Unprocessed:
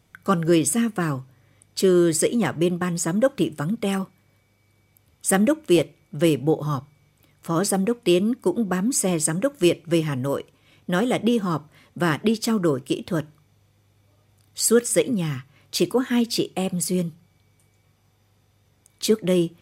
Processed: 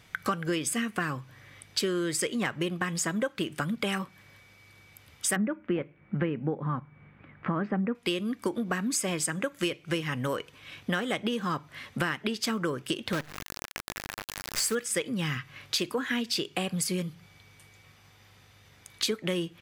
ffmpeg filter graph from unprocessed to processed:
ffmpeg -i in.wav -filter_complex "[0:a]asettb=1/sr,asplit=3[link_01][link_02][link_03];[link_01]atrim=end=5.364[link_04];[link_02]atrim=start=5.36:end=7.95,asetpts=PTS-STARTPTS,afade=type=in:duration=0.004:curve=qsin,afade=type=out:start_time=2.586:duration=0.004:curve=qsin,lowpass=frequency=2100:width=0.5412,lowpass=frequency=2100:width=1.3066,equalizer=frequency=210:width_type=o:width=0.89:gain=9[link_05];[link_03]atrim=start=7.946[link_06];[link_04][link_05]acrossfade=duration=0.004:curve1=hsin:curve2=qsin[link_07];[link_07][link_06]acrossfade=duration=0.004:curve1=qsin:curve2=hsin,asettb=1/sr,asplit=3[link_08][link_09][link_10];[link_08]atrim=end=13.134[link_11];[link_09]atrim=start=13.13:end=14.75,asetpts=PTS-STARTPTS,afade=type=in:duration=0.004:curve=qsin,afade=type=out:start_time=1.616:duration=0.004:curve=qsin,asuperstop=centerf=3200:order=4:qfactor=1.4,acrusher=bits=6:dc=4:mix=0:aa=0.000001,acompressor=mode=upward:threshold=-24dB:ratio=2.5:attack=3.2:release=140:knee=2.83:detection=peak[link_12];[link_10]atrim=start=14.746[link_13];[link_11][link_12]acrossfade=duration=0.004:curve1=hsin:curve2=qsin[link_14];[link_14][link_13]acrossfade=duration=0.004:curve1=qsin:curve2=hsin,firequalizer=gain_entry='entry(350,0);entry(1700,11);entry(8300,2)':delay=0.05:min_phase=1,acompressor=threshold=-30dB:ratio=6,volume=2.5dB" out.wav

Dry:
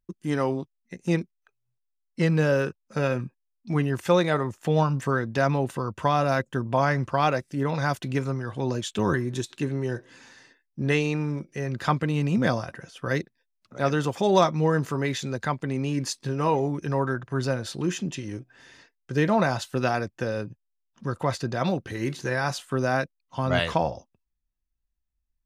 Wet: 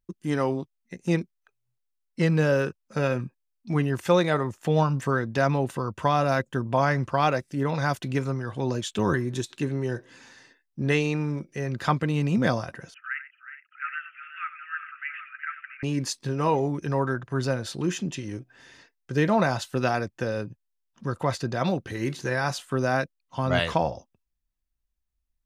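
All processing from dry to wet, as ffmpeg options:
ffmpeg -i in.wav -filter_complex "[0:a]asettb=1/sr,asplit=3[link_01][link_02][link_03];[link_01]atrim=end=12.944[link_04];[link_02]atrim=start=12.94:end=15.83,asetpts=PTS-STARTPTS,afade=type=in:duration=0.004:curve=qsin,afade=type=out:start_time=2.886:duration=0.004:curve=qsin,asuperpass=centerf=1900:order=20:qfactor=1.2,aecho=1:1:92|368|417|771:0.224|0.251|0.158|0.266,atrim=end_sample=127449[link_05];[link_03]atrim=start=15.826[link_06];[link_04][link_05]acrossfade=duration=0.004:curve1=hsin:curve2=qsin[link_07];[link_07][link_06]acrossfade=duration=0.004:curve1=qsin:curve2=hsin" out.wav

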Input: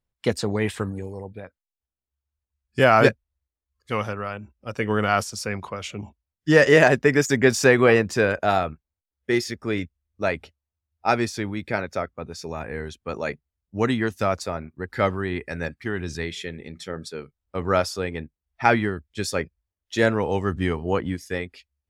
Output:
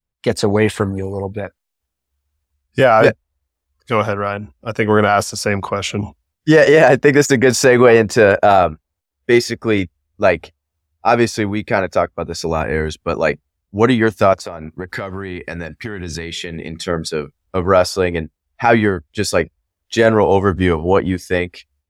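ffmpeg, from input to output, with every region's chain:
ffmpeg -i in.wav -filter_complex "[0:a]asettb=1/sr,asplit=3[link_01][link_02][link_03];[link_01]atrim=end=14.334[link_04];[link_02]atrim=start=14.33:end=16.86,asetpts=PTS-STARTPTS,afade=type=in:duration=0.004:curve=qsin,afade=type=out:start_time=2.526:duration=0.004:curve=qsin,highpass=58,acompressor=threshold=-34dB:ratio=16:attack=3.2:release=140:knee=1:detection=peak[link_05];[link_03]atrim=start=16.856[link_06];[link_04][link_05]acrossfade=duration=0.004:curve1=hsin:curve2=qsin[link_07];[link_07][link_06]acrossfade=duration=0.004:curve1=qsin:curve2=hsin,adynamicequalizer=threshold=0.0355:dfrequency=650:dqfactor=0.8:tfrequency=650:tqfactor=0.8:attack=5:release=100:ratio=0.375:range=3:mode=boostabove:tftype=bell,alimiter=limit=-9dB:level=0:latency=1:release=14,dynaudnorm=framelen=180:gausssize=3:maxgain=13dB" out.wav

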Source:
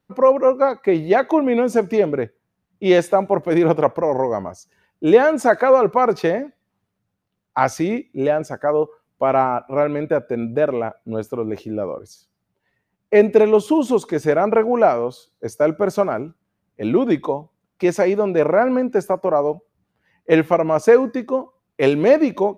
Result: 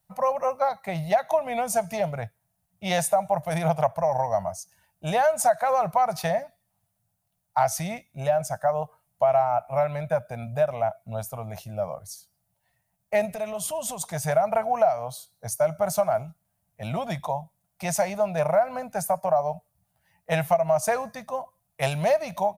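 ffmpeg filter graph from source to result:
ffmpeg -i in.wav -filter_complex "[0:a]asettb=1/sr,asplit=3[link_01][link_02][link_03];[link_01]atrim=end=13.254[link_04];[link_02]atrim=start=13.25:end=14.01,asetpts=PTS-STARTPTS,afade=type=in:duration=0.004:curve=qsin,afade=type=out:start_time=0.756:duration=0.004:curve=qsin,equalizer=frequency=840:width_type=o:width=0.24:gain=-8.5,acompressor=threshold=-19dB:ratio=4:attack=3.2:release=140:knee=1:detection=peak[link_05];[link_03]atrim=start=14.006[link_06];[link_04][link_05]acrossfade=duration=0.004:curve1=hsin:curve2=qsin[link_07];[link_07][link_06]acrossfade=duration=0.004:curve1=qsin:curve2=hsin,firequalizer=gain_entry='entry(160,0);entry(290,-29);entry(420,-25);entry(650,5);entry(1100,-6);entry(2100,-5);entry(9500,13)':delay=0.05:min_phase=1,acompressor=threshold=-18dB:ratio=4" out.wav

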